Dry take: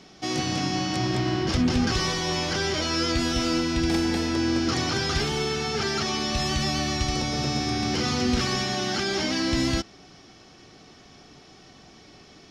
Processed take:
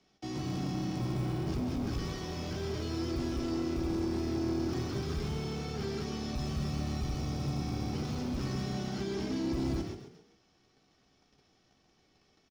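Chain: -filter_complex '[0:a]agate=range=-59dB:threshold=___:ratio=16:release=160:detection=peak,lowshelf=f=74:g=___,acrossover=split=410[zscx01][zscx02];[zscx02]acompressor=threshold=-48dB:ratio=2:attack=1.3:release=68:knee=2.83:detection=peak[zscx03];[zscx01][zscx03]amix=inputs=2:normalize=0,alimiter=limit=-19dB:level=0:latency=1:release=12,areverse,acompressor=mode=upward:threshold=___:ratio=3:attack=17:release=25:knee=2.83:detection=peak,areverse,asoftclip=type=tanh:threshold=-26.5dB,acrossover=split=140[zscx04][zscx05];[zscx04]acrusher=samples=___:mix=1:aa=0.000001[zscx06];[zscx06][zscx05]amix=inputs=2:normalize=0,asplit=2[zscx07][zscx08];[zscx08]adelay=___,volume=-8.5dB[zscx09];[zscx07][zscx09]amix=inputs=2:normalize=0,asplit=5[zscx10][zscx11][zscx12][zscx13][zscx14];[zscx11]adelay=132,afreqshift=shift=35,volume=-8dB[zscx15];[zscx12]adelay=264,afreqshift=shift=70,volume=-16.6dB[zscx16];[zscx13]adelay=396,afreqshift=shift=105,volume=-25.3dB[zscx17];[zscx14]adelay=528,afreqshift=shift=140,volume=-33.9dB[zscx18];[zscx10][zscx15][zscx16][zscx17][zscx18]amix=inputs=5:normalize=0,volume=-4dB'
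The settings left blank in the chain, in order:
-43dB, 5.5, -46dB, 37, 15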